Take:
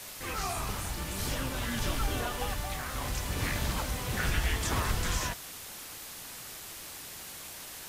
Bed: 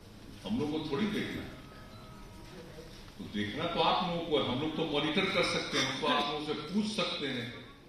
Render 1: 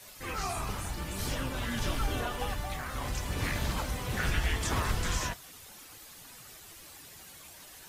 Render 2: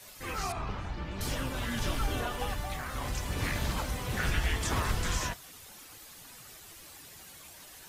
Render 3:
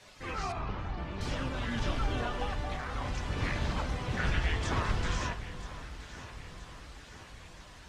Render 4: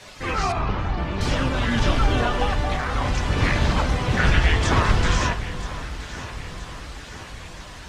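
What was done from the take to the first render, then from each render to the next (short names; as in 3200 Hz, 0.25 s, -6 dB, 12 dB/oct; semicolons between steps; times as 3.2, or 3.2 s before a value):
denoiser 9 dB, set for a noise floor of -45 dBFS
0.52–1.21 air absorption 210 m
air absorption 110 m; echo with dull and thin repeats by turns 0.487 s, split 1200 Hz, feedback 74%, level -11 dB
gain +12 dB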